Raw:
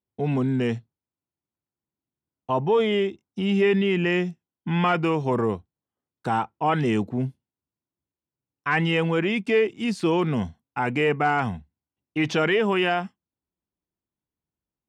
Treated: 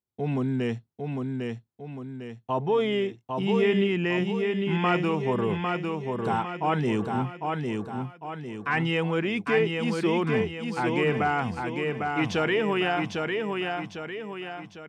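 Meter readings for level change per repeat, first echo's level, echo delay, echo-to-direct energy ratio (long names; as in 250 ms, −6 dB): −6.5 dB, −4.0 dB, 802 ms, −3.0 dB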